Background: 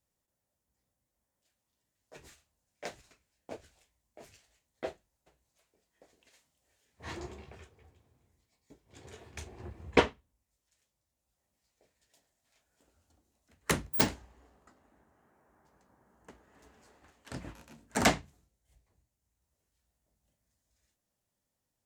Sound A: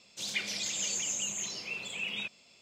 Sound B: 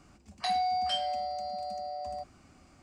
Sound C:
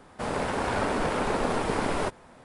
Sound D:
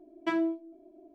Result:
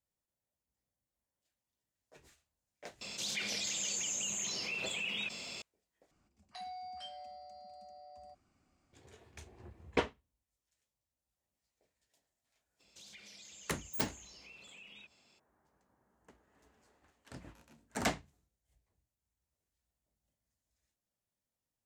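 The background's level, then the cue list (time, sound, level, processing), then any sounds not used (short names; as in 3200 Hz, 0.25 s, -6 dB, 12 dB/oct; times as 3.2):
background -8 dB
3.01 add A -6.5 dB + fast leveller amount 70%
6.11 replace with B -16.5 dB
12.79 add A -8.5 dB, fades 0.02 s + compressor 4:1, threshold -45 dBFS
not used: C, D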